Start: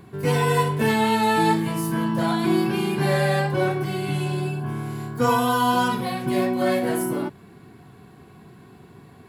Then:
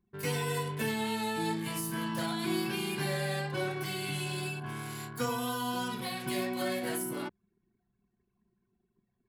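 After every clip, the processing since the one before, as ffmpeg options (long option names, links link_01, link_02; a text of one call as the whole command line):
ffmpeg -i in.wav -filter_complex "[0:a]tiltshelf=frequency=1200:gain=-8.5,acrossover=split=520[link_01][link_02];[link_02]acompressor=threshold=-31dB:ratio=10[link_03];[link_01][link_03]amix=inputs=2:normalize=0,anlmdn=0.631,volume=-4dB" out.wav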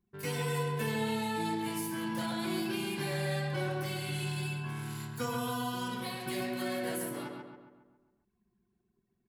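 ffmpeg -i in.wav -filter_complex "[0:a]asplit=2[link_01][link_02];[link_02]adelay=137,lowpass=frequency=2700:poles=1,volume=-3.5dB,asplit=2[link_03][link_04];[link_04]adelay=137,lowpass=frequency=2700:poles=1,volume=0.53,asplit=2[link_05][link_06];[link_06]adelay=137,lowpass=frequency=2700:poles=1,volume=0.53,asplit=2[link_07][link_08];[link_08]adelay=137,lowpass=frequency=2700:poles=1,volume=0.53,asplit=2[link_09][link_10];[link_10]adelay=137,lowpass=frequency=2700:poles=1,volume=0.53,asplit=2[link_11][link_12];[link_12]adelay=137,lowpass=frequency=2700:poles=1,volume=0.53,asplit=2[link_13][link_14];[link_14]adelay=137,lowpass=frequency=2700:poles=1,volume=0.53[link_15];[link_01][link_03][link_05][link_07][link_09][link_11][link_13][link_15]amix=inputs=8:normalize=0,volume=-3dB" out.wav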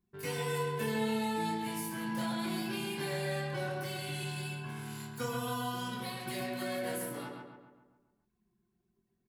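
ffmpeg -i in.wav -filter_complex "[0:a]asplit=2[link_01][link_02];[link_02]adelay=23,volume=-6.5dB[link_03];[link_01][link_03]amix=inputs=2:normalize=0,volume=-2dB" out.wav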